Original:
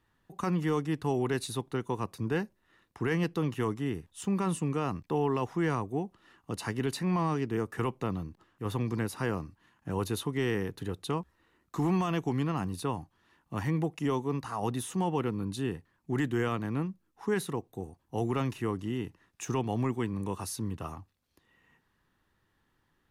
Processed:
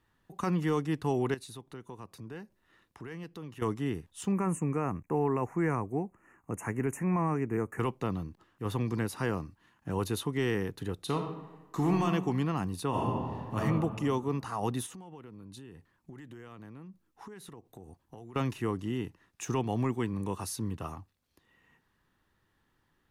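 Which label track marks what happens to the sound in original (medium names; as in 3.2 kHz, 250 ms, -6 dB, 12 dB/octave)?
1.340000	3.620000	compression 2:1, threshold -50 dBFS
4.320000	7.800000	elliptic band-stop 2.4–6.6 kHz, stop band 50 dB
10.950000	12.050000	reverb throw, RT60 1.1 s, DRR 4 dB
12.890000	13.570000	reverb throw, RT60 1.9 s, DRR -8 dB
14.860000	18.360000	compression 16:1, threshold -43 dBFS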